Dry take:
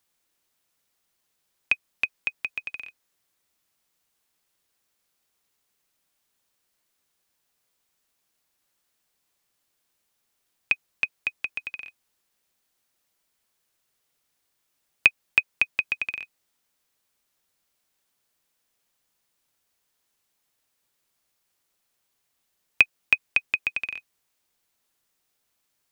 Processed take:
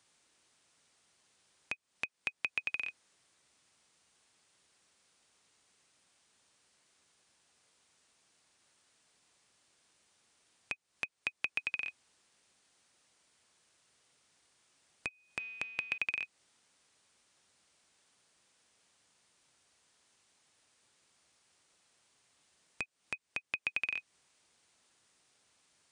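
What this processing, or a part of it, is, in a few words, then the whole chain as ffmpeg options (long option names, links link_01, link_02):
podcast mastering chain: -filter_complex "[0:a]asettb=1/sr,asplit=3[link_01][link_02][link_03];[link_01]atrim=end=15.084[link_04];[link_02]atrim=start=15.08:end=15.98,asetpts=PTS-STARTPTS,afade=type=in:duration=0.004:curve=qsin,afade=type=out:start_time=0.896:duration=0.004:curve=qsin,bandreject=frequency=227.1:width_type=h:width=4,bandreject=frequency=454.2:width_type=h:width=4,bandreject=frequency=681.3:width_type=h:width=4,bandreject=frequency=908.4:width_type=h:width=4,bandreject=frequency=1135.5:width_type=h:width=4,bandreject=frequency=1362.6:width_type=h:width=4,bandreject=frequency=1589.7:width_type=h:width=4,bandreject=frequency=1816.8:width_type=h:width=4,bandreject=frequency=2043.9:width_type=h:width=4,bandreject=frequency=2271:width_type=h:width=4,bandreject=frequency=2498.1:width_type=h:width=4,bandreject=frequency=2725.2:width_type=h:width=4,bandreject=frequency=2952.3:width_type=h:width=4,bandreject=frequency=3179.4:width_type=h:width=4,bandreject=frequency=3406.5:width_type=h:width=4,bandreject=frequency=3633.6:width_type=h:width=4,bandreject=frequency=3860.7:width_type=h:width=4,bandreject=frequency=4087.8:width_type=h:width=4,bandreject=frequency=4314.9:width_type=h:width=4,bandreject=frequency=4542:width_type=h:width=4,bandreject=frequency=4769.1:width_type=h:width=4,bandreject=frequency=4996.2:width_type=h:width=4,bandreject=frequency=5223.3:width_type=h:width=4,bandreject=frequency=5450.4:width_type=h:width=4,bandreject=frequency=5677.5:width_type=h:width=4,bandreject=frequency=5904.6:width_type=h:width=4,bandreject=frequency=6131.7:width_type=h:width=4,bandreject=frequency=6358.8:width_type=h:width=4,bandreject=frequency=6585.9:width_type=h:width=4,bandreject=frequency=6813:width_type=h:width=4,bandreject=frequency=7040.1:width_type=h:width=4,bandreject=frequency=7267.2:width_type=h:width=4,bandreject=frequency=7494.3:width_type=h:width=4[link_05];[link_03]atrim=start=15.976[link_06];[link_04][link_05]acrossfade=duration=0.004:curve1=hsin:curve2=qsin[link_07];[link_07][link_06]acrossfade=duration=0.004:curve1=qsin:curve2=hsin,highpass=64,deesser=0.55,acompressor=threshold=-40dB:ratio=3,alimiter=limit=-22dB:level=0:latency=1:release=284,volume=7.5dB" -ar 22050 -c:a libmp3lame -b:a 128k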